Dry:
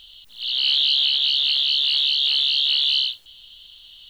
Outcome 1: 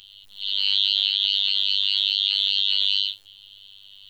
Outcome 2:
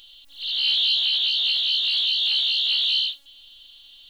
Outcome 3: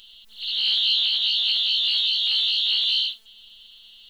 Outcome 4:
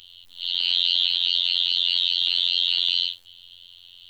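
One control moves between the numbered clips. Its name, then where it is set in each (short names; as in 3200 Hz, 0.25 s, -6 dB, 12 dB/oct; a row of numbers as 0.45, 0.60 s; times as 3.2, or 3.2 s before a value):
robotiser, frequency: 99, 280, 220, 88 Hz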